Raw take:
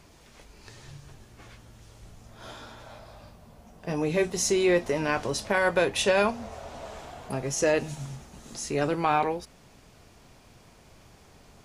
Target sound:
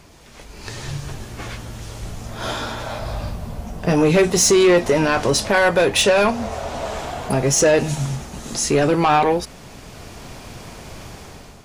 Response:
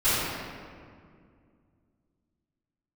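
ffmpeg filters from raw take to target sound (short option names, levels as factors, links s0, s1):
-filter_complex "[0:a]asettb=1/sr,asplit=3[s0][s1][s2];[s0]atrim=end=3.024[s3];[s1]atrim=start=3.02:end=3.89,asetpts=PTS-STARTPTS,afade=t=in:d=0.004:c=qsin,afade=t=out:st=0.866:d=0.004:c=qsin,lowshelf=f=130:g=9[s4];[s2]atrim=start=3.886[s5];[s3][s4]acrossfade=d=0.004:c1=hsin:c2=qsin[s6];[s6][s5]acrossfade=d=0.004:c1=qsin:c2=hsin,asplit=2[s7][s8];[s8]alimiter=limit=0.106:level=0:latency=1:release=152,volume=0.944[s9];[s7][s9]amix=inputs=2:normalize=0,dynaudnorm=f=240:g=5:m=3.35,asoftclip=type=tanh:threshold=0.316,volume=1.19"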